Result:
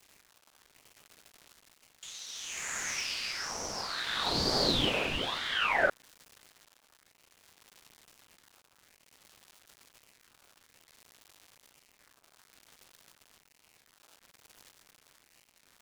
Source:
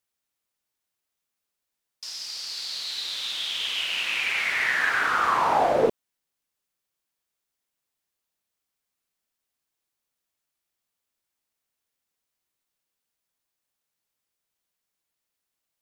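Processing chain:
surface crackle 380 per second −38 dBFS
rotating-speaker cabinet horn 0.6 Hz
ring modulator whose carrier an LFO sweeps 1,800 Hz, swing 45%, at 1.1 Hz

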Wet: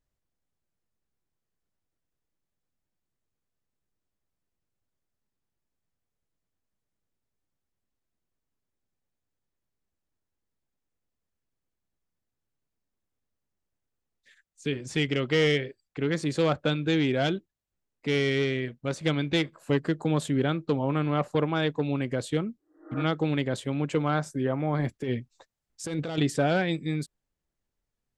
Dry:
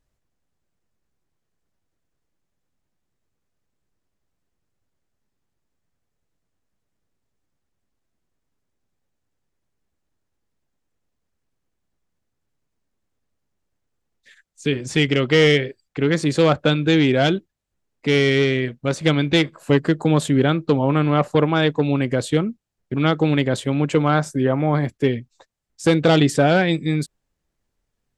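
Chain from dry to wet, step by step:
0:22.60–0:22.99: healed spectral selection 300–2,000 Hz both
0:24.79–0:26.18: compressor whose output falls as the input rises −21 dBFS, ratio −1
level −8.5 dB

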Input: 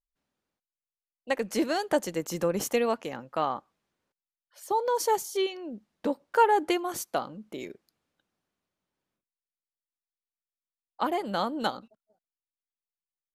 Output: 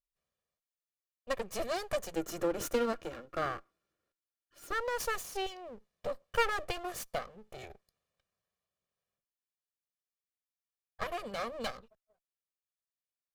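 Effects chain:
lower of the sound and its delayed copy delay 1.7 ms
0:02.14–0:04.80: hollow resonant body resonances 320/1,400 Hz, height 16 dB, ringing for 60 ms
level −4.5 dB

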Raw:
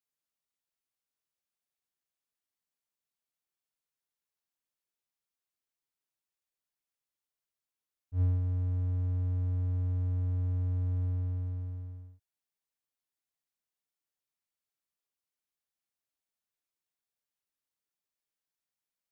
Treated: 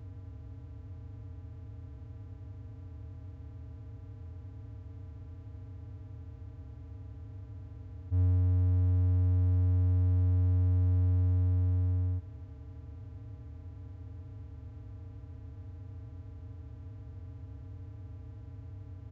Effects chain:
compressor on every frequency bin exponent 0.2
downsampling to 16,000 Hz

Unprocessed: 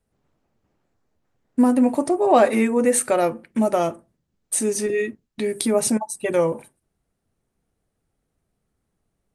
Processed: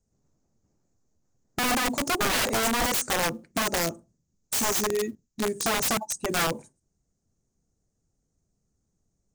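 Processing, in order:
drawn EQ curve 170 Hz 0 dB, 3,200 Hz −14 dB, 6,700 Hz +11 dB, 11,000 Hz −18 dB
floating-point word with a short mantissa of 4 bits
wrap-around overflow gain 20 dB

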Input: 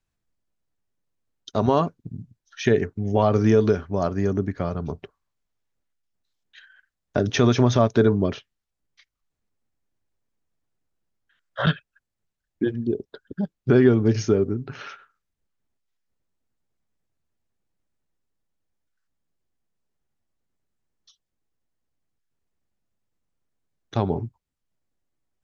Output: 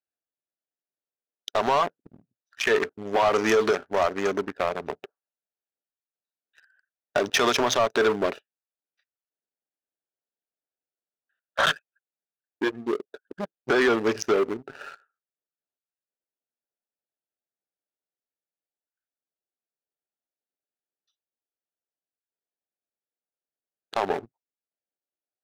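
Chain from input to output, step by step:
adaptive Wiener filter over 41 samples
high-pass filter 830 Hz 12 dB per octave
brickwall limiter −21 dBFS, peak gain reduction 7.5 dB
leveller curve on the samples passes 2
level +7 dB

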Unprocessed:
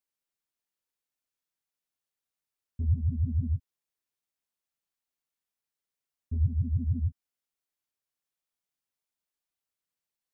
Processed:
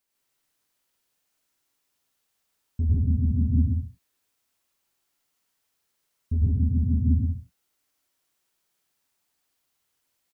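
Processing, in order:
in parallel at +0.5 dB: compressor whose output falls as the input rises −32 dBFS
on the sum: loudspeakers that aren't time-aligned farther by 35 metres −2 dB, 52 metres 0 dB, 76 metres −10 dB
reverb whose tail is shaped and stops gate 180 ms rising, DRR 5.5 dB

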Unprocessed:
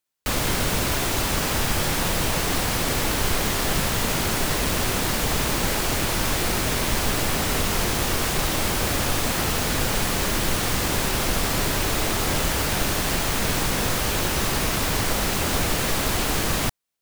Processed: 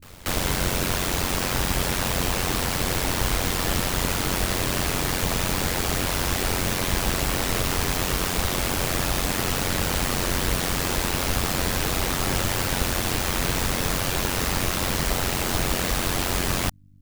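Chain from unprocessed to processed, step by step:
backwards echo 236 ms −21 dB
mains hum 50 Hz, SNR 28 dB
ring modulation 45 Hz
level +1.5 dB

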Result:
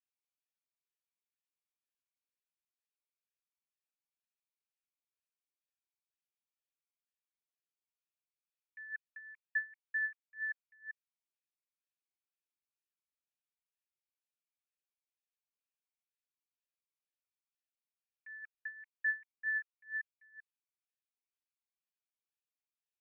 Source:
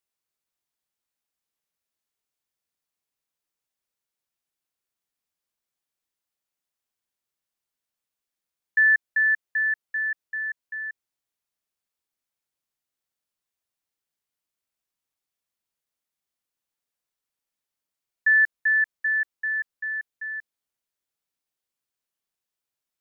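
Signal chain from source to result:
first difference
formant filter swept between two vowels e-u 2.1 Hz
level +11.5 dB

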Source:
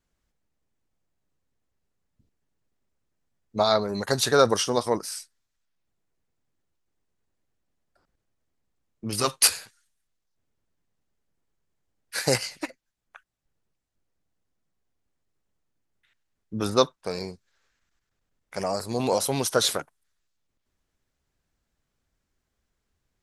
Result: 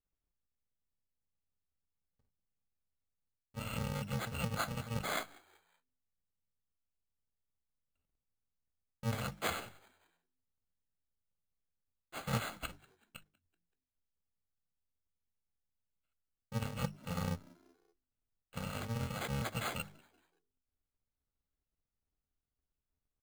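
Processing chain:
samples in bit-reversed order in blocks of 128 samples
noise gate with hold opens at −46 dBFS
reversed playback
downward compressor 6 to 1, threshold −35 dBFS, peak gain reduction 20.5 dB
reversed playback
high-frequency loss of the air 280 metres
mains-hum notches 50/100/150/200 Hz
on a send: echo with shifted repeats 190 ms, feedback 43%, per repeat +85 Hz, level −24 dB
on the sum: bad sample-rate conversion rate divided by 8×, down filtered, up hold
level +11 dB

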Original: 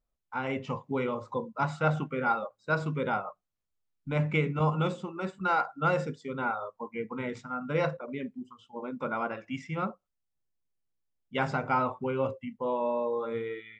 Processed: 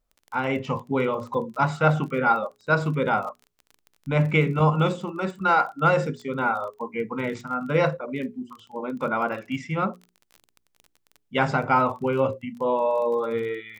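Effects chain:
surface crackle 24 per second −42 dBFS
mains-hum notches 60/120/180/240/300/360/420 Hz
level +7 dB

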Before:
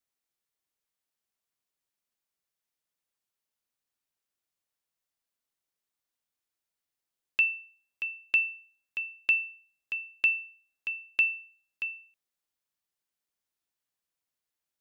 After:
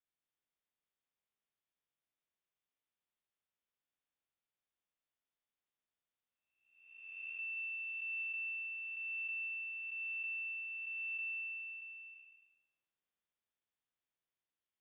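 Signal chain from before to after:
spectrum smeared in time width 659 ms
0:07.57–0:08.23: bass and treble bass −4 dB, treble +8 dB
level −3 dB
AAC 16 kbit/s 32,000 Hz

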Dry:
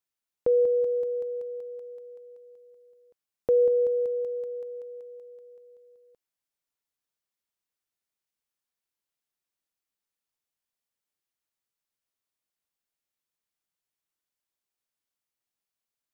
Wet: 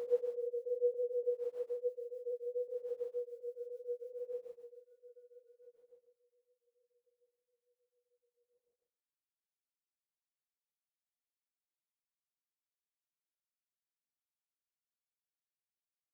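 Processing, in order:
noise gate −51 dBFS, range −30 dB
extreme stretch with random phases 7.5×, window 0.10 s, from 0:04.99
tremolo along a rectified sine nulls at 6.9 Hz
level +9.5 dB

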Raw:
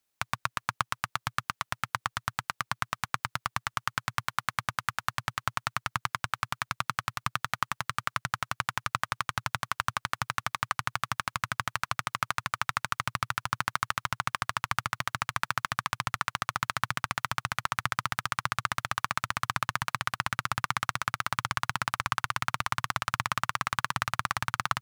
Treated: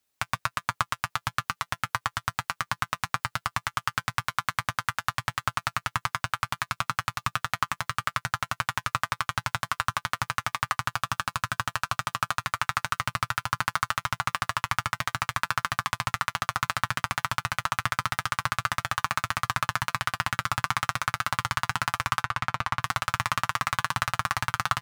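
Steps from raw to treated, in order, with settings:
0:10.84–0:12.45: notch filter 2,100 Hz, Q 7.2
0:22.22–0:22.80: low-pass filter 2,800 Hz 6 dB per octave
notch comb filter 170 Hz
level +4 dB

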